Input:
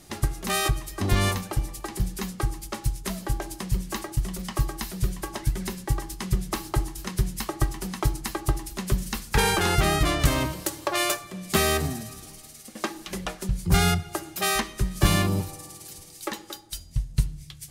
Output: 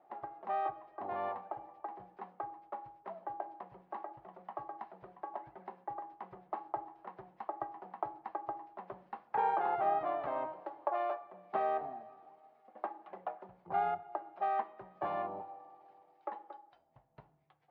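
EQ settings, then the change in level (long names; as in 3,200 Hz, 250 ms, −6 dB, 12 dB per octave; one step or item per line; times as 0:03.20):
four-pole ladder band-pass 860 Hz, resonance 60%
high-frequency loss of the air 310 metres
tilt shelving filter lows +6.5 dB
+2.5 dB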